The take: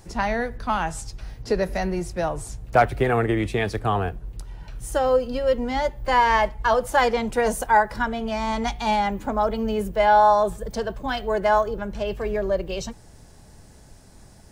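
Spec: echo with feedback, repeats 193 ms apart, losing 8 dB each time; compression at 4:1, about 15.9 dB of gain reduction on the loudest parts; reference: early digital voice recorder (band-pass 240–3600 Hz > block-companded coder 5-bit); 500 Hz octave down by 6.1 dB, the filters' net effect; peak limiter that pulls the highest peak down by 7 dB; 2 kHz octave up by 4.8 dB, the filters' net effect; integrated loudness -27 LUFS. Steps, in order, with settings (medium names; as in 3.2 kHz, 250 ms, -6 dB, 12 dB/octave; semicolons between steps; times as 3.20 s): peaking EQ 500 Hz -8 dB; peaking EQ 2 kHz +7 dB; compression 4:1, threshold -33 dBFS; peak limiter -26 dBFS; band-pass 240–3600 Hz; feedback delay 193 ms, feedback 40%, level -8 dB; block-companded coder 5-bit; trim +10.5 dB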